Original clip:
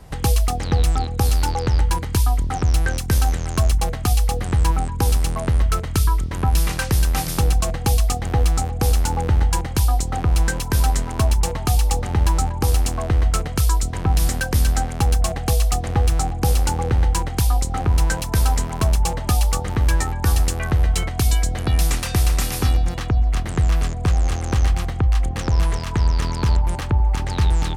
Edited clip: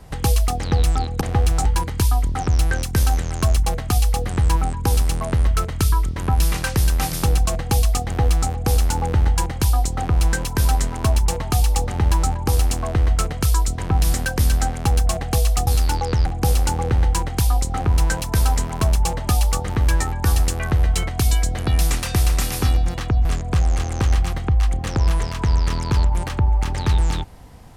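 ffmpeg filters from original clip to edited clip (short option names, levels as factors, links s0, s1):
-filter_complex "[0:a]asplit=6[s0][s1][s2][s3][s4][s5];[s0]atrim=end=1.212[s6];[s1]atrim=start=15.818:end=16.262[s7];[s2]atrim=start=1.798:end=15.822[s8];[s3]atrim=start=1.208:end=1.802[s9];[s4]atrim=start=16.258:end=23.252[s10];[s5]atrim=start=23.768[s11];[s6][s7]acrossfade=d=0.004:c1=hsin:c2=hsin[s12];[s12][s8]acrossfade=d=0.004:c1=hsin:c2=hsin[s13];[s13][s9]acrossfade=d=0.004:c1=hsin:c2=hsin[s14];[s14][s10]acrossfade=d=0.004:c1=hsin:c2=hsin[s15];[s15][s11]acrossfade=d=0.004:c1=hsin:c2=hsin"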